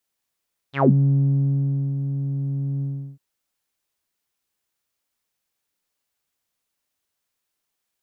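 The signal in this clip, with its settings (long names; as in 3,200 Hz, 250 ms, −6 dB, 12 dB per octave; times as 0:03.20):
subtractive voice saw C#3 12 dB per octave, low-pass 190 Hz, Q 11, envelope 4.5 octaves, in 0.17 s, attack 107 ms, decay 1.11 s, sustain −9 dB, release 0.36 s, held 2.09 s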